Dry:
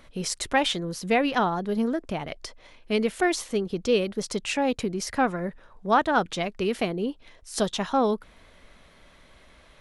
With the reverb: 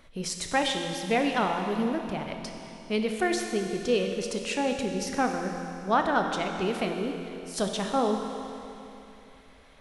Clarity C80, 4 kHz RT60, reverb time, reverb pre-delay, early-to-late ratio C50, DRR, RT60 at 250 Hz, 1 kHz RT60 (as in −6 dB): 5.0 dB, 2.9 s, 3.0 s, 23 ms, 4.5 dB, 3.5 dB, 3.0 s, 3.0 s